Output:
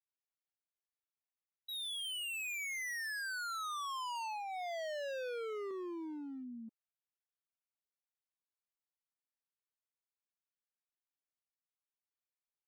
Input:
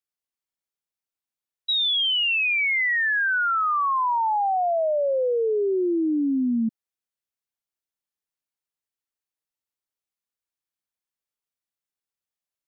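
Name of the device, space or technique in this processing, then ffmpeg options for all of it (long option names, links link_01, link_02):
walkie-talkie: -filter_complex "[0:a]asettb=1/sr,asplit=3[link_01][link_02][link_03];[link_01]atrim=end=4.154[link_04];[link_02]atrim=start=4.15:end=5.71,asetpts=PTS-STARTPTS,afade=type=in:duration=0.004:curve=qsin,afade=type=out:start_time=1.556:duration=0.004:curve=qsin,aecho=1:1:1.9:0.63,atrim=end_sample=68796[link_05];[link_03]atrim=start=5.706[link_06];[link_04][link_05]acrossfade=duration=0.004:curve1=hsin:curve2=qsin[link_07];[link_07][link_06]acrossfade=duration=0.004:curve1=qsin:curve2=hsin,highpass=580,lowpass=2600,asoftclip=type=hard:threshold=-34dB,agate=range=-20dB:threshold=-34dB:ratio=16:detection=peak,volume=11.5dB"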